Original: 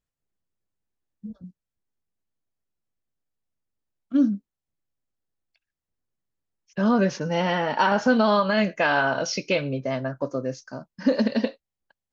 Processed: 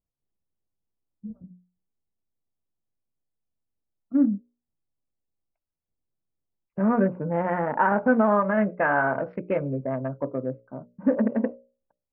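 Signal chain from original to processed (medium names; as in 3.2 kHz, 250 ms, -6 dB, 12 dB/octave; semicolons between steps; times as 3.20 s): local Wiener filter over 25 samples; steep low-pass 1.9 kHz 36 dB/octave; hum notches 60/120/180/240/300/360/420/480/540/600 Hz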